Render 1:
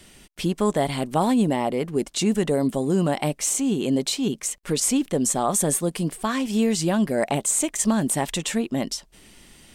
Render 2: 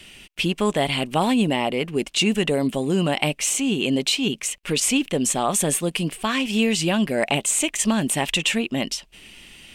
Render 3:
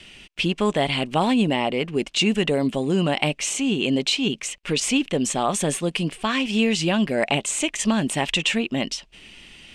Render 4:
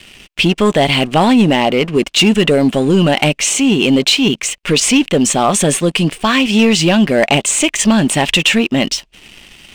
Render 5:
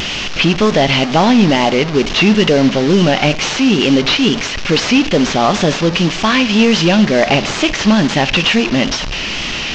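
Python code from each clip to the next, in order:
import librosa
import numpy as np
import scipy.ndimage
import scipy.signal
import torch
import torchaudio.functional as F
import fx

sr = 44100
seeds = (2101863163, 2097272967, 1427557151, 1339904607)

y1 = fx.peak_eq(x, sr, hz=2700.0, db=13.5, octaves=0.75)
y2 = scipy.signal.sosfilt(scipy.signal.butter(2, 6900.0, 'lowpass', fs=sr, output='sos'), y1)
y3 = fx.leveller(y2, sr, passes=2)
y3 = F.gain(torch.from_numpy(y3), 3.5).numpy()
y4 = fx.delta_mod(y3, sr, bps=32000, step_db=-14.5)
y4 = fx.rev_schroeder(y4, sr, rt60_s=0.74, comb_ms=29, drr_db=15.5)
y4 = fx.wow_flutter(y4, sr, seeds[0], rate_hz=2.1, depth_cents=49.0)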